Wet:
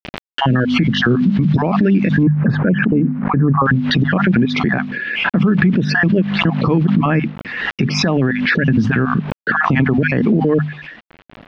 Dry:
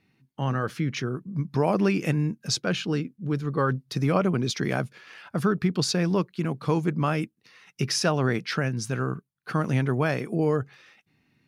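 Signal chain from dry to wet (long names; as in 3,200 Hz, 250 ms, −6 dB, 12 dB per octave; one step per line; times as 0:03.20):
time-frequency cells dropped at random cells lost 35%
mains-hum notches 50/100/150/200/250 Hz
hollow resonant body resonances 220/1,700 Hz, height 13 dB, ringing for 25 ms
downward compressor 12 to 1, threshold −22 dBFS, peak gain reduction 13 dB
bit reduction 9 bits
low-pass filter 3,600 Hz 24 dB per octave, from 0:02.23 1,700 Hz, from 0:03.66 3,200 Hz
boost into a limiter +22 dB
background raised ahead of every attack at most 44 dB per second
level −5.5 dB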